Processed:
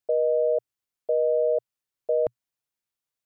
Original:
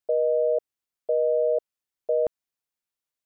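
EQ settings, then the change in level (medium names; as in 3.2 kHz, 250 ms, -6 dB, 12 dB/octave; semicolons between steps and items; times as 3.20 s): peaking EQ 120 Hz +6.5 dB 0.38 oct; 0.0 dB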